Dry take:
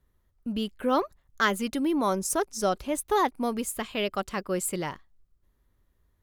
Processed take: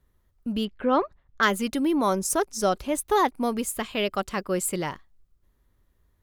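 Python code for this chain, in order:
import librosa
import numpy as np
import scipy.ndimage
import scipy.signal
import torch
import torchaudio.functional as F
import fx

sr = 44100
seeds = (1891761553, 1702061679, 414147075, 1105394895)

y = fx.lowpass(x, sr, hz=2900.0, slope=12, at=(0.65, 1.43))
y = y * 10.0 ** (2.5 / 20.0)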